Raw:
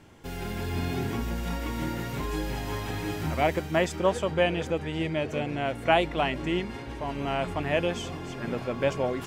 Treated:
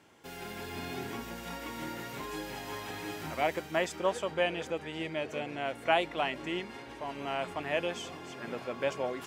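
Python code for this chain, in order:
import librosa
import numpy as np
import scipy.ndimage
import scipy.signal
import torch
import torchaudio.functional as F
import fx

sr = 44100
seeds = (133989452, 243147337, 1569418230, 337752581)

y = fx.highpass(x, sr, hz=420.0, slope=6)
y = y * 10.0 ** (-3.5 / 20.0)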